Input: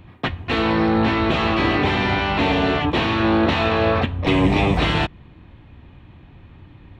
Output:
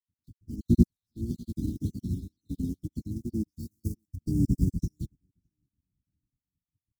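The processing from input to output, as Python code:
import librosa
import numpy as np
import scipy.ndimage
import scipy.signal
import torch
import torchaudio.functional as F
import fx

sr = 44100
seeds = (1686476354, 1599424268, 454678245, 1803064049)

p1 = fx.spec_dropout(x, sr, seeds[0], share_pct=55)
p2 = fx.wow_flutter(p1, sr, seeds[1], rate_hz=2.1, depth_cents=120.0)
p3 = fx.quant_companded(p2, sr, bits=4)
p4 = p2 + F.gain(torch.from_numpy(p3), -12.0).numpy()
p5 = fx.high_shelf(p4, sr, hz=5700.0, db=9.5, at=(3.59, 4.16))
p6 = fx.spec_box(p5, sr, start_s=3.13, length_s=1.89, low_hz=550.0, high_hz=4400.0, gain_db=-17)
p7 = fx.low_shelf(p6, sr, hz=350.0, db=11.5, at=(0.65, 1.17))
p8 = fx.fold_sine(p7, sr, drive_db=7, ceiling_db=1.5)
p9 = scipy.signal.sosfilt(scipy.signal.cheby2(4, 50, [580.0, 2700.0], 'bandstop', fs=sr, output='sos'), p8)
p10 = p9 + fx.echo_feedback(p9, sr, ms=617, feedback_pct=42, wet_db=-19, dry=0)
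p11 = fx.upward_expand(p10, sr, threshold_db=-32.0, expansion=2.5)
y = F.gain(torch.from_numpy(p11), -9.0).numpy()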